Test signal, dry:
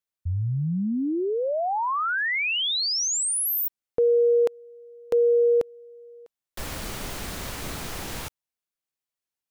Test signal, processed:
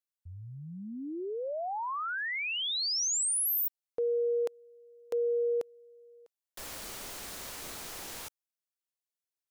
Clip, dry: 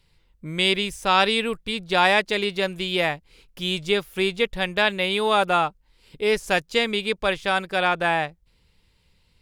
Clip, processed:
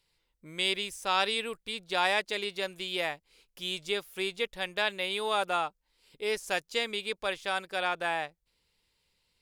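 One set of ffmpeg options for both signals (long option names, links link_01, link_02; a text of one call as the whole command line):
ffmpeg -i in.wav -af "bass=frequency=250:gain=-10,treble=frequency=4000:gain=5,volume=-9dB" out.wav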